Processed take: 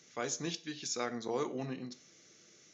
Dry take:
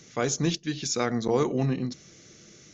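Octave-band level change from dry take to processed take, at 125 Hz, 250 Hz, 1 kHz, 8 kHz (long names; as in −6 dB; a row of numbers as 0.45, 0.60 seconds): −17.0 dB, −12.5 dB, −8.5 dB, can't be measured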